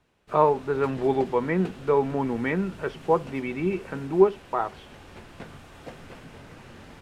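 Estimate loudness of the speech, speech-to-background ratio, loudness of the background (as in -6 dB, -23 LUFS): -25.5 LUFS, 19.5 dB, -45.0 LUFS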